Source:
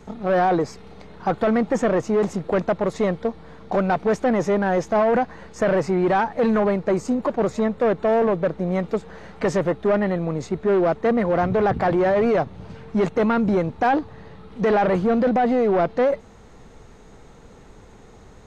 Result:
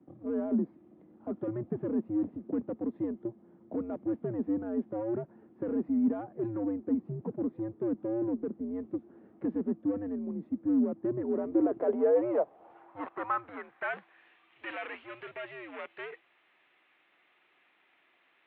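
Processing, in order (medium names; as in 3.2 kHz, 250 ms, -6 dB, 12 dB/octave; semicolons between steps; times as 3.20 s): mistuned SSB -110 Hz 280–3500 Hz; band-pass sweep 220 Hz -> 2.5 kHz, 10.99–14.26 s; trim -3 dB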